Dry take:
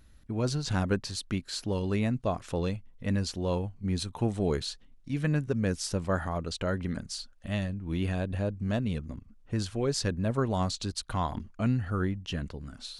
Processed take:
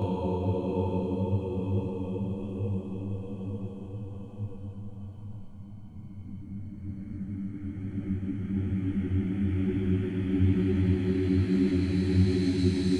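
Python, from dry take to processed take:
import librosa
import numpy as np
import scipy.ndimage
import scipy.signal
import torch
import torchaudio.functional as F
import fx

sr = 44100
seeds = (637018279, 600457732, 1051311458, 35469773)

y = fx.spec_quant(x, sr, step_db=30)
y = fx.paulstretch(y, sr, seeds[0], factor=42.0, window_s=0.25, from_s=3.62)
y = fx.detune_double(y, sr, cents=39)
y = y * librosa.db_to_amplitude(7.5)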